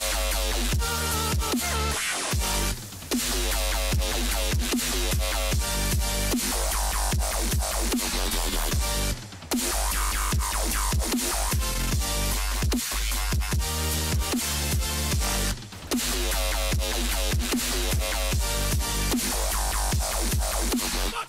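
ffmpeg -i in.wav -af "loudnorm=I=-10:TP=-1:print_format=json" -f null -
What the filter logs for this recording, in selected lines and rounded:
"input_i" : "-25.8",
"input_tp" : "-15.8",
"input_lra" : "0.6",
"input_thresh" : "-35.8",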